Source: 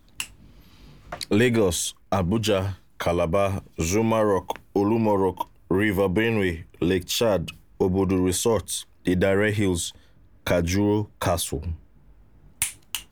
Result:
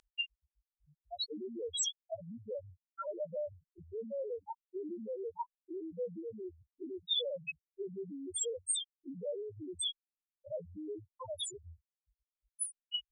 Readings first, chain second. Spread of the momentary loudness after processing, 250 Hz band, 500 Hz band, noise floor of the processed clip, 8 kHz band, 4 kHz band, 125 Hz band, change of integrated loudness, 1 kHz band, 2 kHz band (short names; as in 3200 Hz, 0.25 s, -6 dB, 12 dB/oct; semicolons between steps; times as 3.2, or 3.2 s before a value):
12 LU, -23.0 dB, -17.0 dB, under -85 dBFS, -9.5 dB, -6.5 dB, -29.0 dB, -16.0 dB, -20.0 dB, -20.0 dB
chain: compressor 8:1, threshold -29 dBFS, peak gain reduction 13.5 dB; loudest bins only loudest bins 1; weighting filter ITU-R 468; gain +7.5 dB